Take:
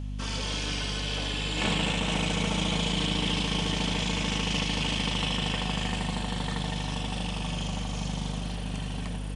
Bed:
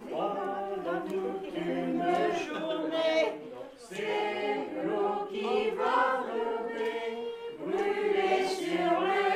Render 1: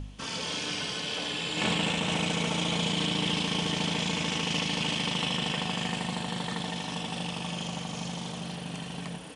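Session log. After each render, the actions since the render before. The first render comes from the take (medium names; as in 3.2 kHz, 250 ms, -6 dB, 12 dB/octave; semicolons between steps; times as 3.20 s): de-hum 50 Hz, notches 5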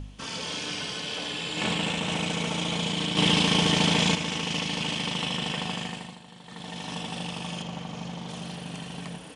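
3.17–4.15 s: gain +7 dB; 5.71–6.92 s: dip -15 dB, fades 0.48 s; 7.62–8.29 s: low-pass 2.6 kHz 6 dB/octave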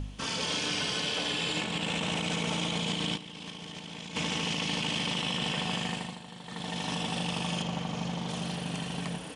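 compressor with a negative ratio -30 dBFS, ratio -0.5; peak limiter -21 dBFS, peak gain reduction 5.5 dB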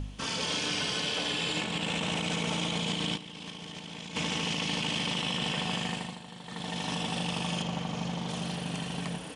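no audible change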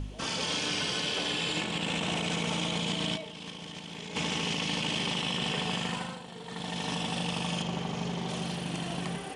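add bed -16.5 dB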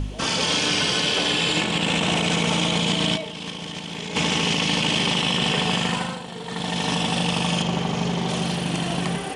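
trim +9.5 dB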